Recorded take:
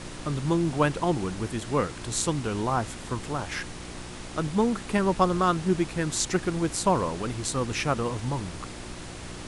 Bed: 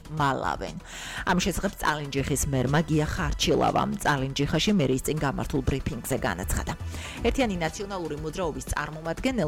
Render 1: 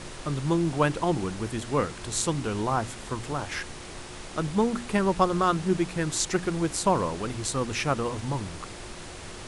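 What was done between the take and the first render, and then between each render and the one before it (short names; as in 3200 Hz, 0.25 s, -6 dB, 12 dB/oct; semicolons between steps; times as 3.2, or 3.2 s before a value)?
de-hum 60 Hz, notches 5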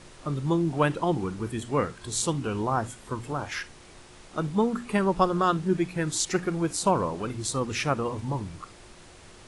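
noise print and reduce 9 dB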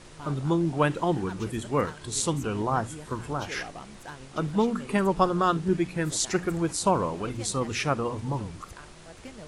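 add bed -18.5 dB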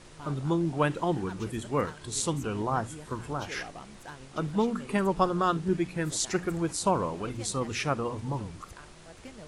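gain -2.5 dB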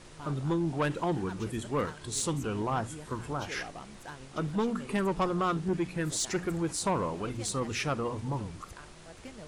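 soft clip -22 dBFS, distortion -13 dB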